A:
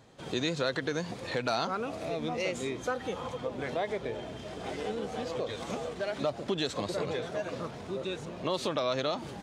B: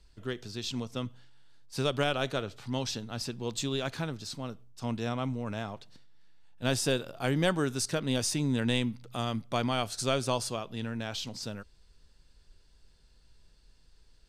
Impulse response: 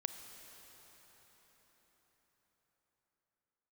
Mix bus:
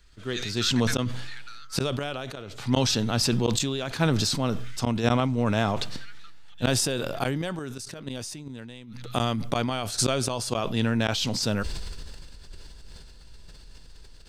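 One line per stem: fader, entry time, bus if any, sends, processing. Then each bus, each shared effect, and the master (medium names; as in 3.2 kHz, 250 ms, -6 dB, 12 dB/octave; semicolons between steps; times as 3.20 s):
-2.5 dB, 0.00 s, no send, steep high-pass 1.2 kHz 96 dB/octave; auto duck -21 dB, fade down 1.50 s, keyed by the second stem
+1.0 dB, 0.00 s, no send, none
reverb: none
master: level rider gain up to 10 dB; inverted gate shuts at -11 dBFS, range -27 dB; decay stretcher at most 22 dB/s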